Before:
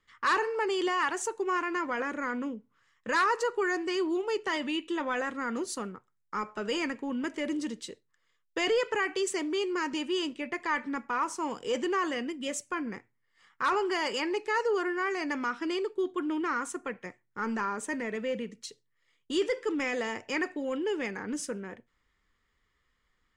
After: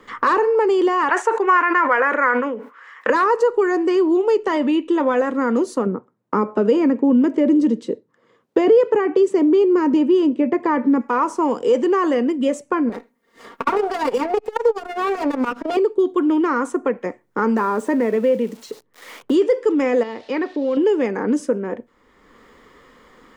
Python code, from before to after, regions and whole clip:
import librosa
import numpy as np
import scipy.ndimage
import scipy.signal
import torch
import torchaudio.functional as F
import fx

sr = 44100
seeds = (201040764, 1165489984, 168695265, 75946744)

y = fx.chain(x, sr, fx.highpass(hz=480.0, slope=12),
    fx.peak_eq(hz=1800.0, db=15.0, octaves=1.8),
    fx.sustainer(db_per_s=120.0), at=(1.09, 3.1))
y = fx.chain(y, sr, fx.highpass(hz=120.0, slope=12),
    fx.tilt_eq(slope=-3.5), at=(5.86, 11.01))
y = fx.chain(y, sr, fx.lower_of_two(delay_ms=4.3),
    fx.high_shelf(hz=8900.0, db=4.0),
    fx.transformer_sat(knee_hz=570.0), at=(12.89, 15.77))
y = fx.chain(y, sr, fx.crossing_spikes(level_db=-36.0),
    fx.lowpass(hz=3500.0, slope=6), at=(17.57, 19.34))
y = fx.chain(y, sr, fx.crossing_spikes(level_db=-34.5),
    fx.ladder_lowpass(hz=4800.0, resonance_pct=45), at=(20.03, 20.77))
y = fx.graphic_eq(y, sr, hz=(250, 500, 1000), db=(11, 12, 7))
y = fx.band_squash(y, sr, depth_pct=70)